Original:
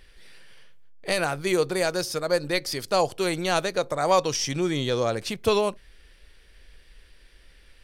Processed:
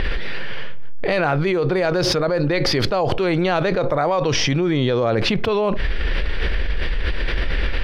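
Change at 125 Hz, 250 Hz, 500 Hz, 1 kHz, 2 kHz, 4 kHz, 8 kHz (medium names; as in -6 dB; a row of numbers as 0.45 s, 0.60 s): +12.0 dB, +8.5 dB, +5.0 dB, +4.0 dB, +7.0 dB, +6.0 dB, -1.0 dB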